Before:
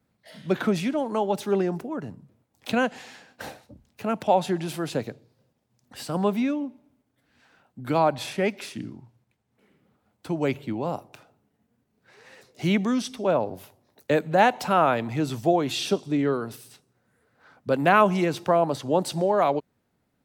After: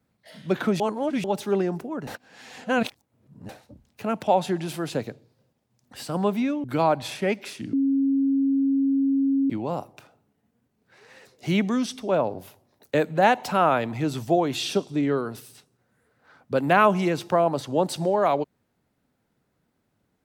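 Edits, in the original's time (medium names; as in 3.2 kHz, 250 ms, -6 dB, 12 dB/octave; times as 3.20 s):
0.80–1.24 s: reverse
2.07–3.49 s: reverse
6.64–7.80 s: delete
8.89–10.66 s: bleep 273 Hz -18.5 dBFS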